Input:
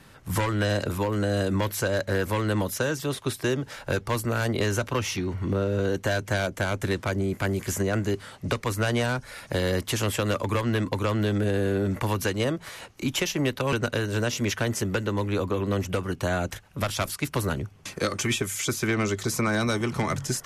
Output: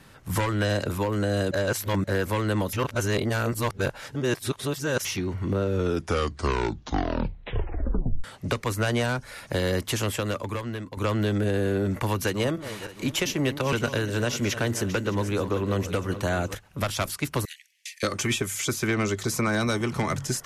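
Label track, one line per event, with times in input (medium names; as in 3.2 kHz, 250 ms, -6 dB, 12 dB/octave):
1.510000	2.040000	reverse
2.730000	5.050000	reverse
5.620000	5.620000	tape stop 2.62 s
9.910000	10.970000	fade out, to -12.5 dB
11.950000	16.550000	backward echo that repeats 307 ms, feedback 49%, level -12 dB
17.450000	18.030000	steep high-pass 1.8 kHz 96 dB/octave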